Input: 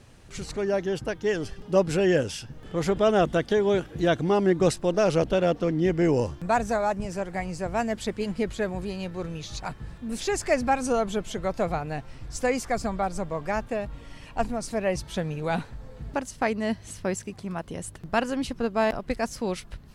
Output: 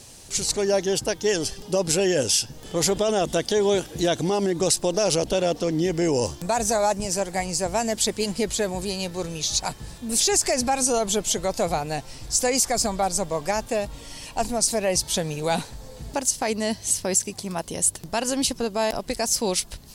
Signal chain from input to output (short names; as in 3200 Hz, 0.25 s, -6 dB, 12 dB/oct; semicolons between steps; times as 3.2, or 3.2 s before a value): tone controls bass -2 dB, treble +11 dB; limiter -18 dBFS, peak gain reduction 9 dB; EQ curve 130 Hz 0 dB, 910 Hz +4 dB, 1300 Hz -2 dB, 4700 Hz +7 dB; gain +2 dB